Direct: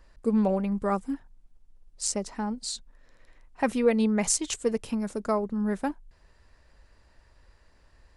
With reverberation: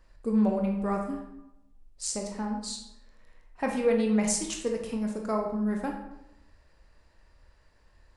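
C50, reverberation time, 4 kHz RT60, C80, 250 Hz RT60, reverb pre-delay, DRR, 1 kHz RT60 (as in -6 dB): 5.0 dB, 0.90 s, 0.60 s, 8.0 dB, 0.85 s, 18 ms, 1.0 dB, 0.85 s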